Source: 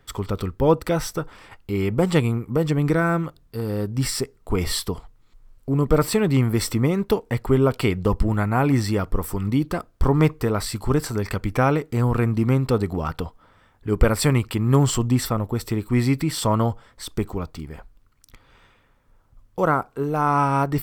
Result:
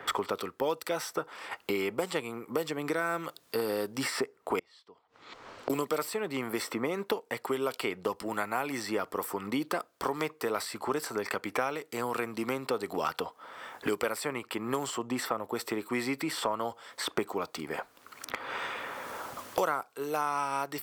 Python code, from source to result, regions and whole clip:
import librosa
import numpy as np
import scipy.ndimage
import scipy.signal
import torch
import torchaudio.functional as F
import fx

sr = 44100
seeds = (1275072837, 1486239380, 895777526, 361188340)

y = fx.chain(x, sr, fx.gate_flip(shuts_db=-30.0, range_db=-30),
    fx.air_absorb(metres=160.0), at=(4.59, 5.7))
y = fx.rider(y, sr, range_db=10, speed_s=0.5)
y = scipy.signal.sosfilt(scipy.signal.butter(2, 460.0, 'highpass', fs=sr, output='sos'), y)
y = fx.band_squash(y, sr, depth_pct=100)
y = F.gain(torch.from_numpy(y), -6.0).numpy()